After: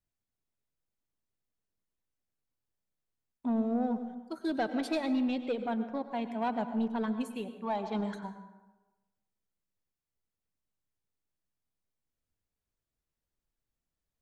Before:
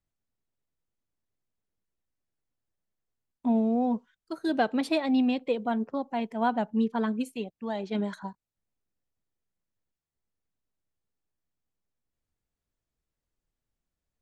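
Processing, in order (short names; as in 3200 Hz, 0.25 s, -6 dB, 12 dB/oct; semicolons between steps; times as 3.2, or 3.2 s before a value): 7.61–8.04 band shelf 970 Hz +9.5 dB 1.1 oct; soft clip -20 dBFS, distortion -18 dB; plate-style reverb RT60 1.1 s, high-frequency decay 0.55×, pre-delay 85 ms, DRR 10 dB; gain -3.5 dB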